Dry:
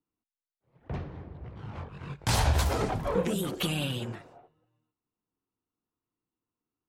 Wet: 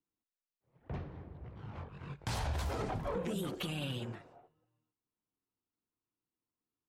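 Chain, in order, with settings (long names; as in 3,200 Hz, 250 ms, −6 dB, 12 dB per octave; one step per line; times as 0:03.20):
high-shelf EQ 6,200 Hz −6 dB
brickwall limiter −22.5 dBFS, peak gain reduction 8 dB
level −5.5 dB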